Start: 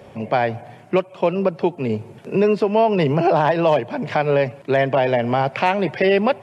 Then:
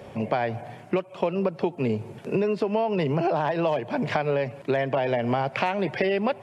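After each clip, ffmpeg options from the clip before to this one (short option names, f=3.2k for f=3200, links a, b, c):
-af "acompressor=threshold=-21dB:ratio=6"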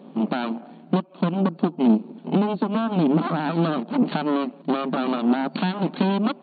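-af "aeval=exprs='0.335*(cos(1*acos(clip(val(0)/0.335,-1,1)))-cos(1*PI/2))+0.15*(cos(4*acos(clip(val(0)/0.335,-1,1)))-cos(4*PI/2))+0.0668*(cos(8*acos(clip(val(0)/0.335,-1,1)))-cos(8*PI/2))':c=same,afftfilt=real='re*between(b*sr/4096,160,4500)':imag='im*between(b*sr/4096,160,4500)':win_size=4096:overlap=0.75,equalizer=f=250:t=o:w=1:g=12,equalizer=f=500:t=o:w=1:g=-6,equalizer=f=2k:t=o:w=1:g=-12,volume=-3dB"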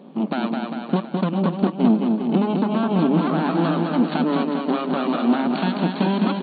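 -af "areverse,acompressor=mode=upward:threshold=-28dB:ratio=2.5,areverse,aecho=1:1:210|399|569.1|722.2|860:0.631|0.398|0.251|0.158|0.1"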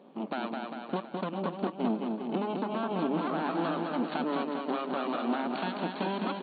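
-af "bass=f=250:g=-12,treble=f=4k:g=-5,volume=-7dB"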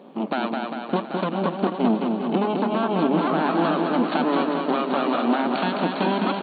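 -af "aecho=1:1:785:0.335,volume=9dB"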